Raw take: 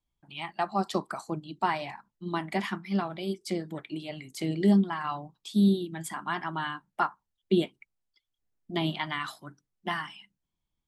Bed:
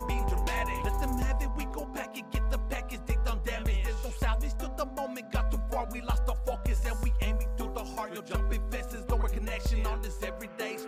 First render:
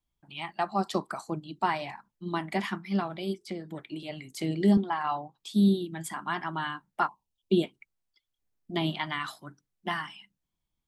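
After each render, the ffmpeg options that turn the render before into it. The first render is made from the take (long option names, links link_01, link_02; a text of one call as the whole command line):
ffmpeg -i in.wav -filter_complex "[0:a]asettb=1/sr,asplit=3[link_01][link_02][link_03];[link_01]atrim=end=3.434[link_04];[link_02]atrim=start=3.43:end=4.03,asetpts=PTS-STARTPTS,afade=type=in:duration=0.004:curve=qsin,afade=type=out:start_time=0.596:duration=0.004:curve=qsin,acrossover=split=470|4000[link_05][link_06][link_07];[link_05]acompressor=threshold=-35dB:ratio=4[link_08];[link_06]acompressor=threshold=-43dB:ratio=4[link_09];[link_07]acompressor=threshold=-56dB:ratio=4[link_10];[link_08][link_09][link_10]amix=inputs=3:normalize=0[link_11];[link_03]atrim=start=4.026[link_12];[link_04][link_11]acrossfade=duration=0.004:curve1=hsin:curve2=qsin[link_13];[link_13][link_12]acrossfade=duration=0.004:curve1=qsin:curve2=hsin,asettb=1/sr,asplit=3[link_14][link_15][link_16];[link_14]atrim=end=4.774[link_17];[link_15]atrim=start=4.77:end=5.38,asetpts=PTS-STARTPTS,afade=type=in:duration=0.004:curve=qsin,afade=type=out:start_time=0.606:duration=0.004:curve=qsin,highpass=110,equalizer=frequency=180:width_type=q:width=4:gain=-10,equalizer=frequency=520:width_type=q:width=4:gain=4,equalizer=frequency=800:width_type=q:width=4:gain=8,equalizer=frequency=5500:width_type=q:width=4:gain=-4,lowpass=frequency=7500:width=0.5412,lowpass=frequency=7500:width=1.3066[link_18];[link_16]atrim=start=5.376[link_19];[link_17][link_18]acrossfade=duration=0.004:curve1=hsin:curve2=qsin[link_20];[link_20][link_19]acrossfade=duration=0.004:curve1=qsin:curve2=hsin,asplit=3[link_21][link_22][link_23];[link_21]afade=type=out:start_time=7.07:duration=0.02[link_24];[link_22]asuperstop=centerf=1600:order=12:qfactor=1.2,afade=type=in:start_time=7.07:duration=0.02,afade=type=out:start_time=7.62:duration=0.02[link_25];[link_23]afade=type=in:start_time=7.62:duration=0.02[link_26];[link_24][link_25][link_26]amix=inputs=3:normalize=0" out.wav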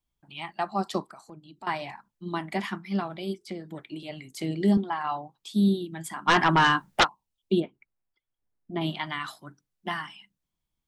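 ffmpeg -i in.wav -filter_complex "[0:a]asettb=1/sr,asplit=3[link_01][link_02][link_03];[link_01]atrim=end=1.054[link_04];[link_02]atrim=start=1.05:end=1.67,asetpts=PTS-STARTPTS,afade=type=in:duration=0.004:curve=qsin,afade=type=out:start_time=0.616:duration=0.004:curve=qsin,acompressor=threshold=-52dB:ratio=2:attack=3.2:release=140:knee=1:detection=peak[link_05];[link_03]atrim=start=1.666[link_06];[link_04][link_05]acrossfade=duration=0.004:curve1=hsin:curve2=qsin[link_07];[link_07][link_06]acrossfade=duration=0.004:curve1=qsin:curve2=hsin,asplit=3[link_08][link_09][link_10];[link_08]afade=type=out:start_time=6.27:duration=0.02[link_11];[link_09]aeval=exprs='0.211*sin(PI/2*3.55*val(0)/0.211)':channel_layout=same,afade=type=in:start_time=6.27:duration=0.02,afade=type=out:start_time=7.03:duration=0.02[link_12];[link_10]afade=type=in:start_time=7.03:duration=0.02[link_13];[link_11][link_12][link_13]amix=inputs=3:normalize=0,asplit=3[link_14][link_15][link_16];[link_14]afade=type=out:start_time=7.59:duration=0.02[link_17];[link_15]lowpass=1800,afade=type=in:start_time=7.59:duration=0.02,afade=type=out:start_time=8.8:duration=0.02[link_18];[link_16]afade=type=in:start_time=8.8:duration=0.02[link_19];[link_17][link_18][link_19]amix=inputs=3:normalize=0" out.wav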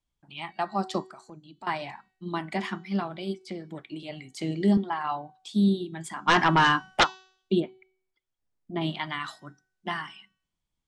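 ffmpeg -i in.wav -af "lowpass=frequency=9200:width=0.5412,lowpass=frequency=9200:width=1.3066,bandreject=frequency=376.3:width_type=h:width=4,bandreject=frequency=752.6:width_type=h:width=4,bandreject=frequency=1128.9:width_type=h:width=4,bandreject=frequency=1505.2:width_type=h:width=4,bandreject=frequency=1881.5:width_type=h:width=4,bandreject=frequency=2257.8:width_type=h:width=4,bandreject=frequency=2634.1:width_type=h:width=4,bandreject=frequency=3010.4:width_type=h:width=4,bandreject=frequency=3386.7:width_type=h:width=4,bandreject=frequency=3763:width_type=h:width=4,bandreject=frequency=4139.3:width_type=h:width=4,bandreject=frequency=4515.6:width_type=h:width=4,bandreject=frequency=4891.9:width_type=h:width=4,bandreject=frequency=5268.2:width_type=h:width=4,bandreject=frequency=5644.5:width_type=h:width=4,bandreject=frequency=6020.8:width_type=h:width=4,bandreject=frequency=6397.1:width_type=h:width=4,bandreject=frequency=6773.4:width_type=h:width=4,bandreject=frequency=7149.7:width_type=h:width=4,bandreject=frequency=7526:width_type=h:width=4" out.wav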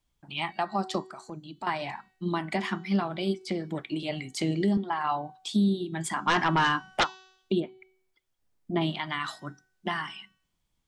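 ffmpeg -i in.wav -filter_complex "[0:a]asplit=2[link_01][link_02];[link_02]acompressor=threshold=-32dB:ratio=6,volume=1dB[link_03];[link_01][link_03]amix=inputs=2:normalize=0,alimiter=limit=-17dB:level=0:latency=1:release=427" out.wav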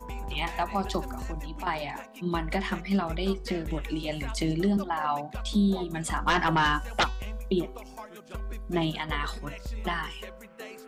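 ffmpeg -i in.wav -i bed.wav -filter_complex "[1:a]volume=-7dB[link_01];[0:a][link_01]amix=inputs=2:normalize=0" out.wav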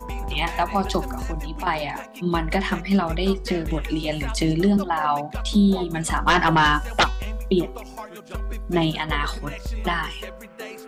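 ffmpeg -i in.wav -af "volume=6.5dB" out.wav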